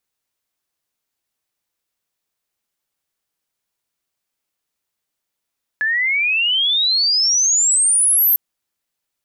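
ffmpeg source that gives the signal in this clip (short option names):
-f lavfi -i "aevalsrc='pow(10,(-15.5+4.5*t/2.55)/20)*sin(2*PI*1700*2.55/log(13000/1700)*(exp(log(13000/1700)*t/2.55)-1))':d=2.55:s=44100"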